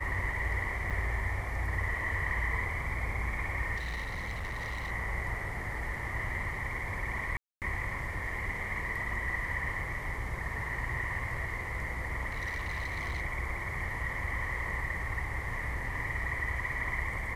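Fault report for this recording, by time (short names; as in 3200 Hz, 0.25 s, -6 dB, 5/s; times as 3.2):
0.9–0.91 gap 6.5 ms
3.76–4.91 clipped -33 dBFS
7.37–7.62 gap 0.248 s
9.13 gap 2.1 ms
12.32–13.22 clipped -31 dBFS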